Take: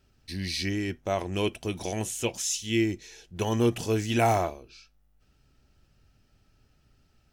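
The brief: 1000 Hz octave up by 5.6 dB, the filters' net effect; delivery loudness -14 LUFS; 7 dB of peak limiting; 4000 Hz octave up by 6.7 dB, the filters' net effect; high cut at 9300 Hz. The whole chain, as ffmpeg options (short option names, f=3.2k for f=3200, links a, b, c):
-af "lowpass=9.3k,equalizer=f=1k:t=o:g=8,equalizer=f=4k:t=o:g=8.5,volume=13.5dB,alimiter=limit=-1.5dB:level=0:latency=1"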